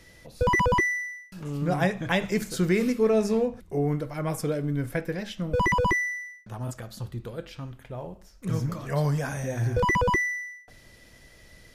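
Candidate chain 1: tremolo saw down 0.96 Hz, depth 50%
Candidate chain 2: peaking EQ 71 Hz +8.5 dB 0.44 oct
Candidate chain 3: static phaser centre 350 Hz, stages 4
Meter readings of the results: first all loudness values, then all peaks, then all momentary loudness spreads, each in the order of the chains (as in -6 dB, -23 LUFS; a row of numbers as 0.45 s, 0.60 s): -29.5 LUFS, -26.5 LUFS, -30.0 LUFS; -12.5 dBFS, -10.5 dBFS, -14.0 dBFS; 16 LU, 16 LU, 18 LU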